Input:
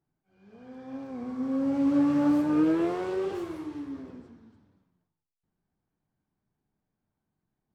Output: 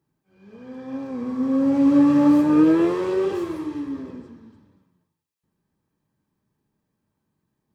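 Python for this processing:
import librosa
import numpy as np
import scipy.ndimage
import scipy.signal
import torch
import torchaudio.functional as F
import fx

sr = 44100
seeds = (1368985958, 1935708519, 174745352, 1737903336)

y = fx.notch_comb(x, sr, f0_hz=720.0)
y = y * 10.0 ** (8.0 / 20.0)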